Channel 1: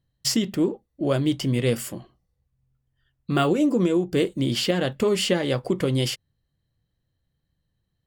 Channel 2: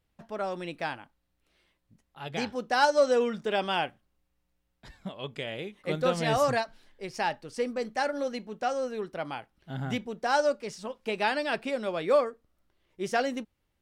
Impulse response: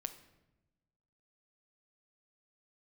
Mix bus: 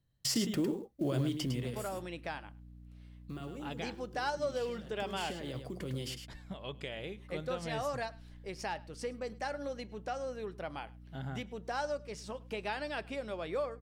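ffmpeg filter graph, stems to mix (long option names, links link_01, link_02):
-filter_complex "[0:a]alimiter=limit=-19.5dB:level=0:latency=1:release=44,acrossover=split=280|3000[link_01][link_02][link_03];[link_02]acompressor=threshold=-30dB:ratio=6[link_04];[link_01][link_04][link_03]amix=inputs=3:normalize=0,acrusher=bits=8:mode=log:mix=0:aa=0.000001,volume=7.5dB,afade=type=out:start_time=1.06:duration=0.76:silence=0.266073,afade=type=out:start_time=3.39:duration=0.49:silence=0.398107,afade=type=in:start_time=4.85:duration=0.59:silence=0.281838,asplit=2[link_05][link_06];[link_06]volume=-7.5dB[link_07];[1:a]acompressor=threshold=-39dB:ratio=2,aeval=exprs='val(0)+0.00355*(sin(2*PI*60*n/s)+sin(2*PI*2*60*n/s)/2+sin(2*PI*3*60*n/s)/3+sin(2*PI*4*60*n/s)/4+sin(2*PI*5*60*n/s)/5)':channel_layout=same,equalizer=frequency=240:width_type=o:width=0.29:gain=-3,adelay=1450,volume=-1.5dB,asplit=2[link_08][link_09];[link_09]volume=-23dB[link_10];[link_07][link_10]amix=inputs=2:normalize=0,aecho=0:1:105:1[link_11];[link_05][link_08][link_11]amix=inputs=3:normalize=0"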